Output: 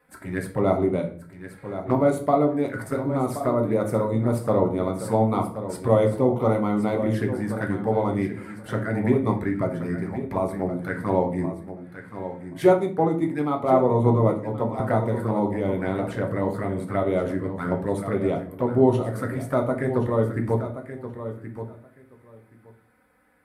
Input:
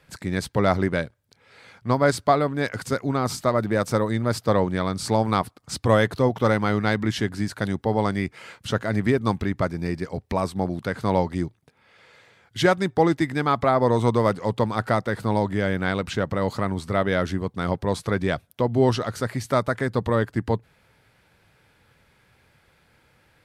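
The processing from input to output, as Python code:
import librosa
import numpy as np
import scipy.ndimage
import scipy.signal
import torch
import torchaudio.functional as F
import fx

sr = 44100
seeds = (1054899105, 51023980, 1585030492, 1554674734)

y = fx.highpass(x, sr, hz=180.0, slope=6)
y = fx.band_shelf(y, sr, hz=4300.0, db=-14.0, octaves=1.7)
y = fx.env_flanger(y, sr, rest_ms=4.1, full_db=-21.0)
y = fx.echo_feedback(y, sr, ms=1076, feedback_pct=15, wet_db=-11)
y = fx.room_shoebox(y, sr, seeds[0], volume_m3=46.0, walls='mixed', distance_m=0.45)
y = fx.band_widen(y, sr, depth_pct=70, at=(12.61, 14.8))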